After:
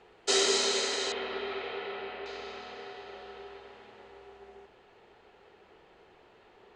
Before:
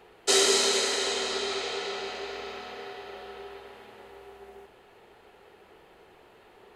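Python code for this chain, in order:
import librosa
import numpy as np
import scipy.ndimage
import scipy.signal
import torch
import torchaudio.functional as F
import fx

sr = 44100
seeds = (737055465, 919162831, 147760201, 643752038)

y = fx.lowpass(x, sr, hz=fx.steps((0.0, 7700.0), (1.12, 3000.0), (2.26, 6900.0)), slope=24)
y = y * librosa.db_to_amplitude(-3.5)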